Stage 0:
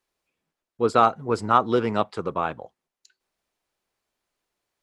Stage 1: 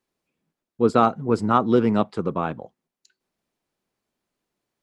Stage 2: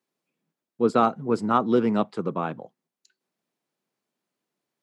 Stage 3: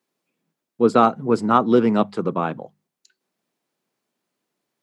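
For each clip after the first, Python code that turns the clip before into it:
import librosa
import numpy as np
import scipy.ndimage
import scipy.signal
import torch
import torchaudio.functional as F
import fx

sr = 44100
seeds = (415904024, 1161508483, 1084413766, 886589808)

y1 = fx.peak_eq(x, sr, hz=200.0, db=11.0, octaves=2.0)
y1 = y1 * 10.0 ** (-2.5 / 20.0)
y2 = scipy.signal.sosfilt(scipy.signal.butter(4, 130.0, 'highpass', fs=sr, output='sos'), y1)
y2 = y2 * 10.0 ** (-2.5 / 20.0)
y3 = fx.hum_notches(y2, sr, base_hz=50, count=4)
y3 = y3 * 10.0 ** (5.0 / 20.0)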